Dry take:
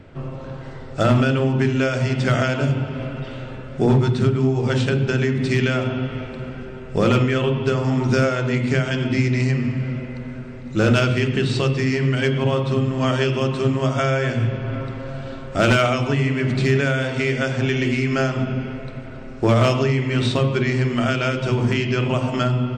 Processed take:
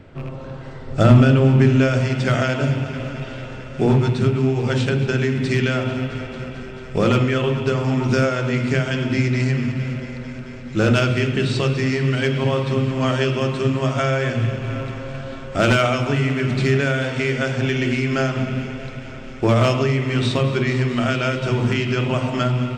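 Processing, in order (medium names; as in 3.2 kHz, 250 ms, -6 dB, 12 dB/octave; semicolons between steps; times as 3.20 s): rattle on loud lows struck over -26 dBFS, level -31 dBFS; 0.87–2.01 s: bass shelf 300 Hz +8 dB; thinning echo 221 ms, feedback 84%, high-pass 450 Hz, level -15.5 dB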